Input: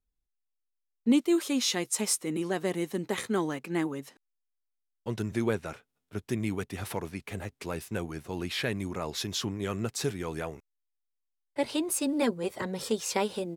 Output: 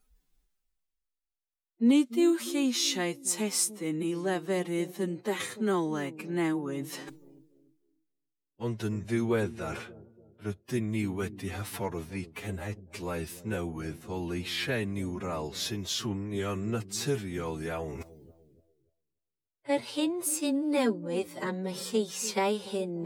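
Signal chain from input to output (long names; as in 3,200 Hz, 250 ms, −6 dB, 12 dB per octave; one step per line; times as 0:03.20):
reversed playback
upward compression, threshold −31 dBFS
reversed playback
phase-vocoder stretch with locked phases 1.7×
delay with a low-pass on its return 291 ms, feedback 38%, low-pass 470 Hz, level −14 dB
noise reduction from a noise print of the clip's start 14 dB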